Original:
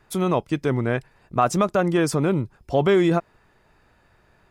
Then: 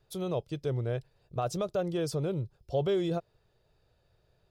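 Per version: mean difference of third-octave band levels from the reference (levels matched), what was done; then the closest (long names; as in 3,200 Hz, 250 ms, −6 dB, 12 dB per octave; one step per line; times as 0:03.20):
3.5 dB: octave-band graphic EQ 125/250/500/1,000/2,000/4,000/8,000 Hz +5/−12/+6/−9/−11/+6/−5 dB
level −8.5 dB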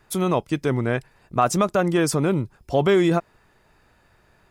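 1.0 dB: high-shelf EQ 5,100 Hz +5.5 dB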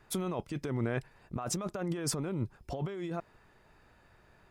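4.5 dB: compressor whose output falls as the input rises −26 dBFS, ratio −1
level −8.5 dB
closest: second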